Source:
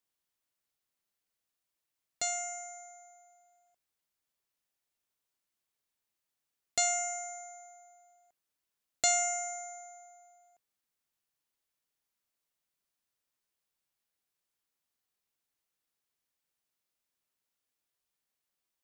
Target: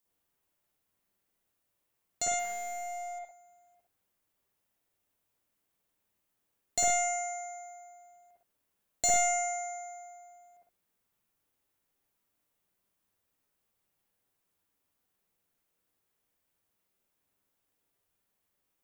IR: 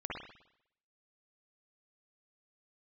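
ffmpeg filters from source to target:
-filter_complex "[0:a]crystalizer=i=6:c=0,asoftclip=type=tanh:threshold=0.473,tiltshelf=f=1400:g=9.5,asettb=1/sr,asplit=3[s0][s1][s2];[s0]atrim=end=2.394[s3];[s1]atrim=start=2.39:end=3.19,asetpts=PTS-STARTPTS,afade=t=in:d=0.004:c=qsin,afade=t=out:st=0.796:d=0.004:c=qsin,asplit=2[s4][s5];[s5]highpass=f=720:p=1,volume=15.8,asoftclip=type=tanh:threshold=0.0422[s6];[s4][s6]amix=inputs=2:normalize=0,lowpass=f=2700:p=1,volume=0.501[s7];[s2]atrim=start=3.186[s8];[s3][s7]acrossfade=d=0.004:c1=hsin:c2=qsin[s9];[s9][s8]acrossfade=d=0.004:c1=qsin:c2=hsin[s10];[1:a]atrim=start_sample=2205,afade=t=out:st=0.18:d=0.01,atrim=end_sample=8379[s11];[s10][s11]afir=irnorm=-1:irlink=0"

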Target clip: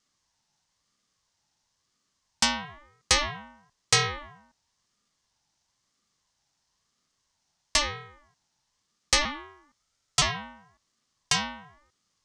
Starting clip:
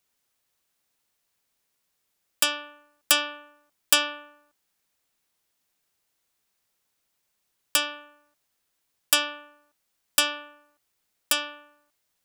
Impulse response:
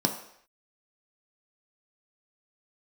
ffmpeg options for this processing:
-filter_complex "[0:a]asplit=2[s0][s1];[s1]alimiter=limit=0.299:level=0:latency=1:release=120,volume=1.33[s2];[s0][s2]amix=inputs=2:normalize=0,highpass=f=280:w=0.5412,highpass=f=280:w=1.3066,equalizer=f=500:t=q:w=4:g=10,equalizer=f=830:t=q:w=4:g=-6,equalizer=f=1900:t=q:w=4:g=-10,equalizer=f=3000:t=q:w=4:g=-6,equalizer=f=5700:t=q:w=4:g=5,lowpass=f=7000:w=0.5412,lowpass=f=7000:w=1.3066,asettb=1/sr,asplit=3[s3][s4][s5];[s3]atrim=end=9.254[s6];[s4]atrim=start=9.25:end=10.22,asetpts=PTS-STARTPTS,afade=t=in:d=0.004:c=qsin,afade=t=out:st=0.966:d=0.004:c=qsin,afreqshift=140[s7];[s5]atrim=start=10.216[s8];[s6][s7]acrossfade=d=0.004:c1=hsin:c2=qsin[s9];[s9][s8]acrossfade=d=0.004:c1=qsin:c2=hsin,aeval=exprs='val(0)*sin(2*PI*530*n/s+530*0.35/1*sin(2*PI*1*n/s))':c=same"

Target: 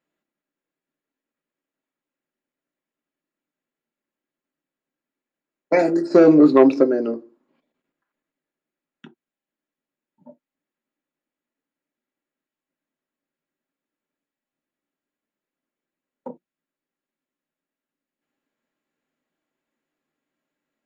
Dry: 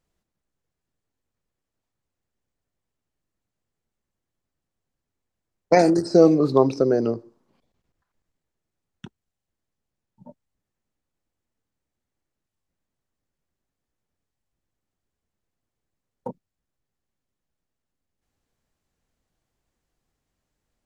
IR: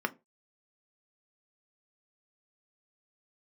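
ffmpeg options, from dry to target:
-filter_complex "[0:a]asplit=3[s0][s1][s2];[s0]afade=t=out:st=6.1:d=0.02[s3];[s1]acontrast=75,afade=t=in:st=6.1:d=0.02,afade=t=out:st=6.83:d=0.02[s4];[s2]afade=t=in:st=6.83:d=0.02[s5];[s3][s4][s5]amix=inputs=3:normalize=0[s6];[1:a]atrim=start_sample=2205,atrim=end_sample=3969,asetrate=57330,aresample=44100[s7];[s6][s7]afir=irnorm=-1:irlink=0,volume=0.562"

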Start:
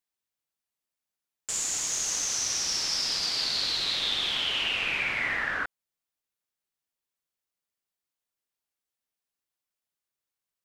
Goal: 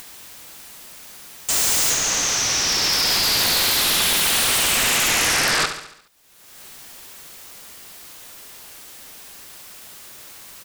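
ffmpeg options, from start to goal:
-filter_complex "[0:a]asettb=1/sr,asplit=3[s0][s1][s2];[s0]atrim=end=1.904[s3];[s1]atrim=start=1.9:end=4.13,asetpts=PTS-STARTPTS,afade=t=in:d=0.004:c=qsin,afade=t=out:st=2.226:d=0.004:c=qsin,acrossover=split=3800[s4][s5];[s5]acompressor=threshold=0.0158:ratio=4:attack=1:release=60[s6];[s4][s6]amix=inputs=2:normalize=0[s7];[s2]atrim=start=4.126[s8];[s3][s7]acrossfade=d=0.004:c1=hsin:c2=qsin[s9];[s9][s8]acrossfade=d=0.004:c1=qsin:c2=hsin,agate=range=0.501:threshold=0.0224:ratio=16:detection=peak,acompressor=mode=upward:threshold=0.0141:ratio=2.5,aeval=exprs='0.15*sin(PI/2*7.08*val(0)/0.15)':c=same,aecho=1:1:70|140|210|280|350|420:0.335|0.178|0.0941|0.0499|0.0264|0.014"

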